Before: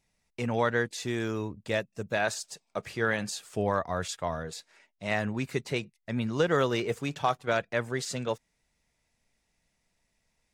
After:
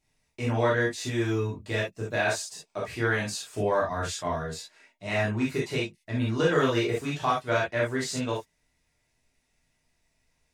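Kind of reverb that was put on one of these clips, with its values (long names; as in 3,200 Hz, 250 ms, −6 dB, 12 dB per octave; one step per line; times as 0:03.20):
reverb whose tail is shaped and stops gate 90 ms flat, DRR −5.5 dB
level −4 dB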